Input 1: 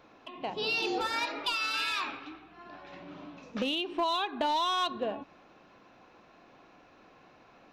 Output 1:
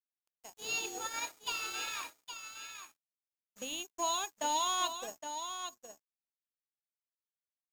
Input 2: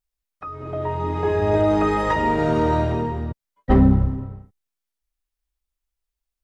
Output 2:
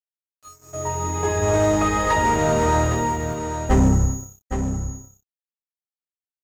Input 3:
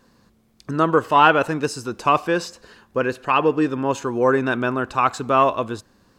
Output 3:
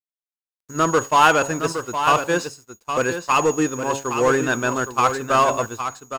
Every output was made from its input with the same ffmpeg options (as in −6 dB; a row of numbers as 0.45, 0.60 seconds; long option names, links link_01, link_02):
-filter_complex "[0:a]bandreject=frequency=138:width_type=h:width=4,bandreject=frequency=276:width_type=h:width=4,bandreject=frequency=414:width_type=h:width=4,bandreject=frequency=552:width_type=h:width=4,bandreject=frequency=690:width_type=h:width=4,bandreject=frequency=828:width_type=h:width=4,bandreject=frequency=966:width_type=h:width=4,aeval=exprs='val(0)+0.0224*sin(2*PI*6700*n/s)':channel_layout=same,equalizer=frequency=260:width=0.78:gain=-4,asplit=2[link_01][link_02];[link_02]aeval=exprs='0.126*(abs(mod(val(0)/0.126+3,4)-2)-1)':channel_layout=same,volume=-6dB[link_03];[link_01][link_03]amix=inputs=2:normalize=0,agate=range=-33dB:threshold=-19dB:ratio=3:detection=peak,aeval=exprs='sgn(val(0))*max(abs(val(0))-0.00596,0)':channel_layout=same,aecho=1:1:815:0.376"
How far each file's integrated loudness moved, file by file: −5.5, −0.5, 0.0 LU